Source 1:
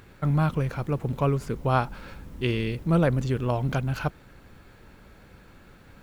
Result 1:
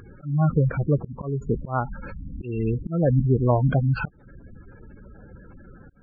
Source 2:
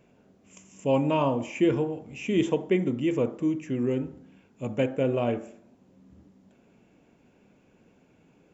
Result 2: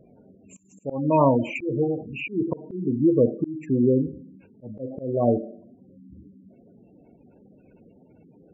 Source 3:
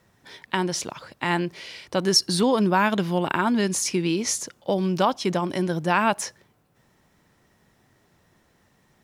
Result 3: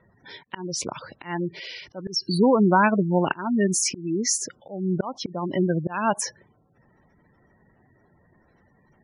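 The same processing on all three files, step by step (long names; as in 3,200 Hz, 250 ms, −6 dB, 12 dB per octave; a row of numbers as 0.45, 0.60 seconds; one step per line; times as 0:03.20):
gate on every frequency bin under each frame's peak −15 dB strong
volume swells 301 ms
loudness normalisation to −24 LKFS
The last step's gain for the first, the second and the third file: +6.5, +7.5, +3.0 decibels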